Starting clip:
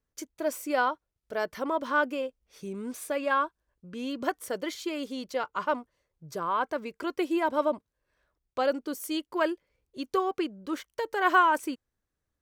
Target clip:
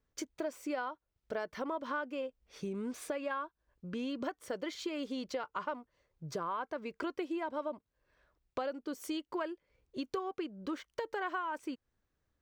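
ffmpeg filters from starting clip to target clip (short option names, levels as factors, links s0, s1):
-af "equalizer=f=12000:t=o:w=1:g=-14.5,acompressor=threshold=0.0126:ratio=6,volume=1.41"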